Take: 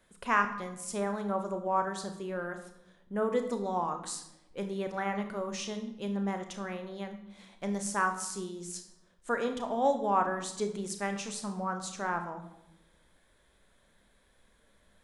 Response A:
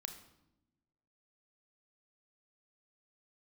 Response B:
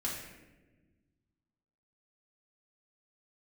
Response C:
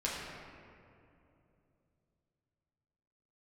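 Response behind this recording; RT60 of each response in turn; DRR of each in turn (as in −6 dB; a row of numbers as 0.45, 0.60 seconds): A; 0.95, 1.2, 2.8 seconds; 6.5, −6.0, −6.5 decibels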